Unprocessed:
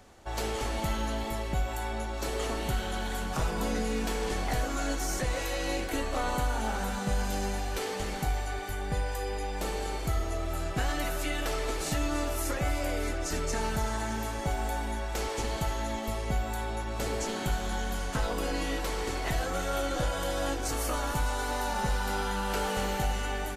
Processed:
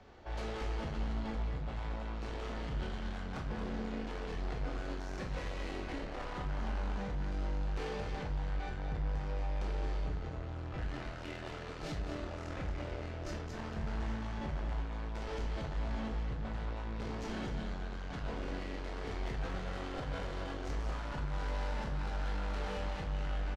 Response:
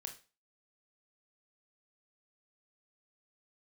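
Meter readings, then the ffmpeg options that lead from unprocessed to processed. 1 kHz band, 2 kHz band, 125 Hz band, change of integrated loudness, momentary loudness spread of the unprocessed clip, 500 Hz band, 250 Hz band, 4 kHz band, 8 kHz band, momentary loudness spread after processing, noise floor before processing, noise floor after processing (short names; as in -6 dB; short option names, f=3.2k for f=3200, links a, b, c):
-11.0 dB, -10.5 dB, -4.5 dB, -8.0 dB, 3 LU, -9.5 dB, -7.0 dB, -12.0 dB, -21.5 dB, 4 LU, -35 dBFS, -42 dBFS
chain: -filter_complex "[0:a]lowpass=f=5.4k:w=0.5412,lowpass=f=5.4k:w=1.3066,highshelf=f=4.1k:g=-8,acrossover=split=250|2700[a][b][c];[a]dynaudnorm=f=460:g=3:m=7dB[d];[d][b][c]amix=inputs=3:normalize=0,alimiter=limit=-20.5dB:level=0:latency=1,asoftclip=type=tanh:threshold=-36dB,asplit=2[e][f];[f]adelay=14,volume=-10.5dB[g];[e][g]amix=inputs=2:normalize=0,aecho=1:1:228:0.376[h];[1:a]atrim=start_sample=2205[i];[h][i]afir=irnorm=-1:irlink=0,volume=2.5dB"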